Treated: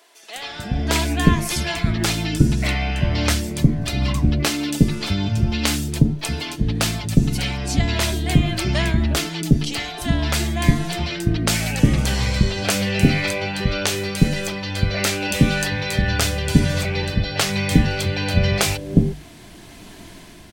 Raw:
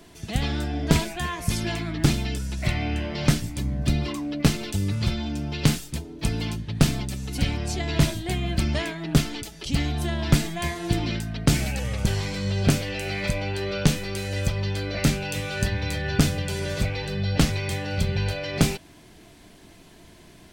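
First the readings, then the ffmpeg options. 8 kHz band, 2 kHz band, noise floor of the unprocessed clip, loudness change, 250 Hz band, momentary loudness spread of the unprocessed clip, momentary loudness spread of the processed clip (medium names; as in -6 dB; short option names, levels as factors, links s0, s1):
+6.5 dB, +6.5 dB, -50 dBFS, +5.5 dB, +5.5 dB, 6 LU, 5 LU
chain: -filter_complex "[0:a]bandreject=f=50:t=h:w=6,bandreject=f=100:t=h:w=6,bandreject=f=150:t=h:w=6,acrossover=split=460[s0][s1];[s0]adelay=360[s2];[s2][s1]amix=inputs=2:normalize=0,dynaudnorm=f=140:g=11:m=3.76"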